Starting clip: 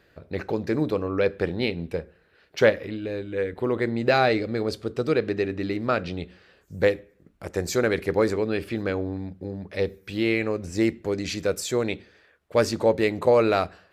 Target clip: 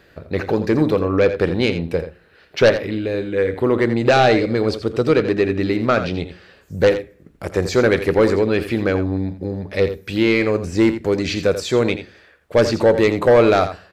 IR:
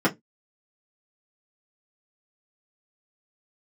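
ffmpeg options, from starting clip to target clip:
-filter_complex "[0:a]acrossover=split=5100[a][b];[b]acompressor=threshold=-49dB:ratio=4:attack=1:release=60[c];[a][c]amix=inputs=2:normalize=0,aeval=exprs='0.668*sin(PI/2*2.51*val(0)/0.668)':c=same,asplit=2[d][e];[e]aecho=0:1:84:0.282[f];[d][f]amix=inputs=2:normalize=0,volume=-3.5dB"

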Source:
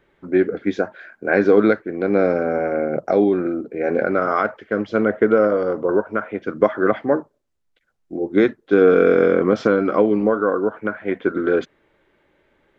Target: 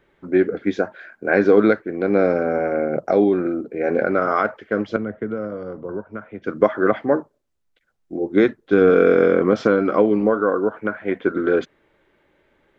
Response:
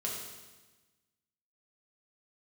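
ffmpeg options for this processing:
-filter_complex "[0:a]asettb=1/sr,asplit=3[a][b][c];[a]atrim=end=4.964[d];[b]atrim=start=4.96:end=6.44,asetpts=PTS-STARTPTS,afade=t=in:d=0.004:c=qsin,afade=t=out:st=1.476:d=0.004:c=qsin,acrossover=split=190[e][f];[f]acompressor=threshold=-51dB:ratio=1.5[g];[e][g]amix=inputs=2:normalize=0[h];[c]atrim=start=6.436[i];[d][h]acrossfade=d=0.004:c1=hsin:c2=qsin[j];[j][i]acrossfade=d=0.004:c1=qsin:c2=hsin,asettb=1/sr,asplit=3[k][l][m];[k]atrim=end=8.444[n];[l]atrim=start=8.44:end=8.9,asetpts=PTS-STARTPTS,afade=t=in:d=0.004:c=qsin,afade=t=out:st=0.456:d=0.004:c=qsin,asubboost=boost=11.5:cutoff=210[o];[m]atrim=start=8.896[p];[n][o]acrossfade=d=0.004:c1=hsin:c2=qsin[q];[q][p]acrossfade=d=0.004:c1=qsin:c2=hsin"

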